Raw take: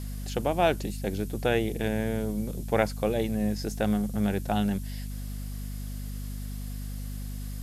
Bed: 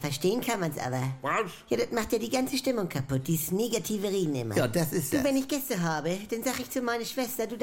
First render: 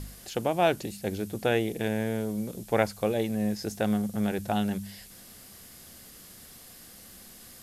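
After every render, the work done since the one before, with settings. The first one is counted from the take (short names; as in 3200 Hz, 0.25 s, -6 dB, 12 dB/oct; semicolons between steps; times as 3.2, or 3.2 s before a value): de-hum 50 Hz, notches 5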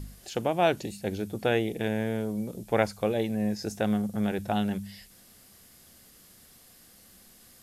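noise print and reduce 6 dB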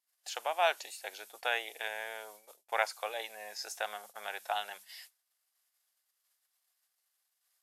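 HPF 760 Hz 24 dB/oct; gate -52 dBFS, range -32 dB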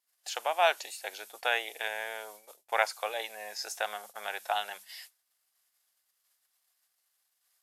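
gain +3.5 dB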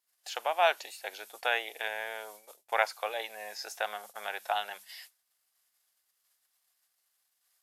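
dynamic EQ 8000 Hz, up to -6 dB, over -51 dBFS, Q 0.86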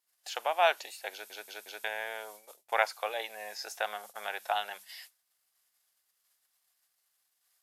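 1.12 stutter in place 0.18 s, 4 plays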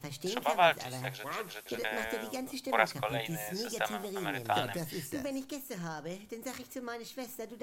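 add bed -11 dB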